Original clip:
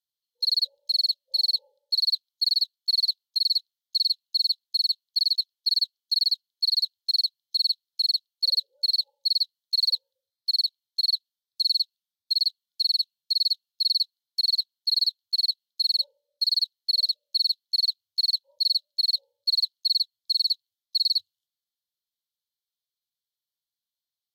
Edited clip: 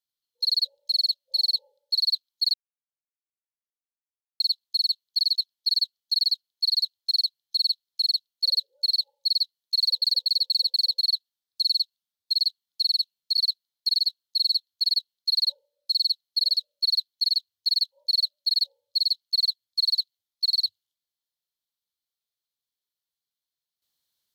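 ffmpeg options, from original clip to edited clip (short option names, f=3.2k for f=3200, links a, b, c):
-filter_complex "[0:a]asplit=9[a][b][c][d][e][f][g][h][i];[a]atrim=end=2.54,asetpts=PTS-STARTPTS,afade=t=out:st=2.536:d=0.004:c=hsin[j];[b]atrim=start=2.54:end=4.4,asetpts=PTS-STARTPTS,volume=0[k];[c]atrim=start=4.4:end=10.022,asetpts=PTS-STARTPTS,afade=t=in:d=0.004:c=hsin[l];[d]atrim=start=9.778:end=10.022[m];[e]atrim=start=9.778:end=10.022[n];[f]atrim=start=9.778:end=10.022[o];[g]atrim=start=9.778:end=10.022[p];[h]atrim=start=10.978:end=13.372[q];[i]atrim=start=13.888[r];[j][k][l]concat=n=3:v=0:a=1[s];[s][m]acrossfade=d=0.004:c1=hsin:c2=hsin[t];[t][n]acrossfade=d=0.004:c1=hsin:c2=hsin[u];[u][o]acrossfade=d=0.004:c1=hsin:c2=hsin[v];[v][p]acrossfade=d=0.004:c1=hsin:c2=hsin[w];[w][q]acrossfade=d=0.004:c1=hsin:c2=hsin[x];[x][r]acrossfade=d=0.004:c1=hsin:c2=hsin"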